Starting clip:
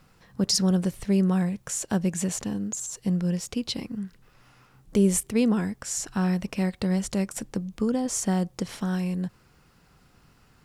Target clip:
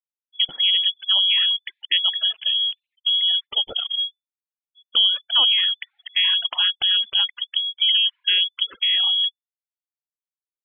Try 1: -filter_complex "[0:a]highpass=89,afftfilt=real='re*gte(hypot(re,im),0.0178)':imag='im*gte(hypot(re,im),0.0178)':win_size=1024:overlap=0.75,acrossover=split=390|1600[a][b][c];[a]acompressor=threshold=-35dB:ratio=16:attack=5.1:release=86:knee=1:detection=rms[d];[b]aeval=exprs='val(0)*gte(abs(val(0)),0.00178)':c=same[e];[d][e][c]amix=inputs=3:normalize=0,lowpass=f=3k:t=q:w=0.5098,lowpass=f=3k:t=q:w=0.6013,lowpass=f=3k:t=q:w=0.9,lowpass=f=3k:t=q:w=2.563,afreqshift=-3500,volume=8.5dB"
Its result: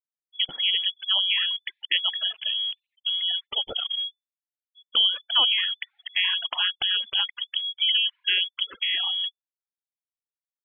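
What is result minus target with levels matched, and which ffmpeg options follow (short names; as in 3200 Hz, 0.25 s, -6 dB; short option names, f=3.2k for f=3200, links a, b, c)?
compressor: peak gain reduction +8.5 dB
-filter_complex "[0:a]highpass=89,afftfilt=real='re*gte(hypot(re,im),0.0178)':imag='im*gte(hypot(re,im),0.0178)':win_size=1024:overlap=0.75,acrossover=split=390|1600[a][b][c];[a]acompressor=threshold=-26dB:ratio=16:attack=5.1:release=86:knee=1:detection=rms[d];[b]aeval=exprs='val(0)*gte(abs(val(0)),0.00178)':c=same[e];[d][e][c]amix=inputs=3:normalize=0,lowpass=f=3k:t=q:w=0.5098,lowpass=f=3k:t=q:w=0.6013,lowpass=f=3k:t=q:w=0.9,lowpass=f=3k:t=q:w=2.563,afreqshift=-3500,volume=8.5dB"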